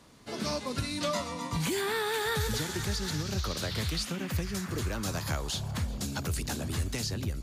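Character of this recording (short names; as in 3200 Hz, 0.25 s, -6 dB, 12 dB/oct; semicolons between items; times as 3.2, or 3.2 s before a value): noise floor -41 dBFS; spectral tilt -4.0 dB/oct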